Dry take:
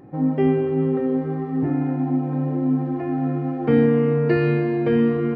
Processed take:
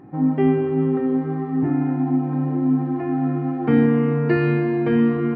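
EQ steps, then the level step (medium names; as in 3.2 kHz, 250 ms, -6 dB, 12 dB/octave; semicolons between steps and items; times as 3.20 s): bass shelf 150 Hz -8.5 dB; peaking EQ 520 Hz -10 dB 0.61 oct; treble shelf 2.8 kHz -10.5 dB; +5.0 dB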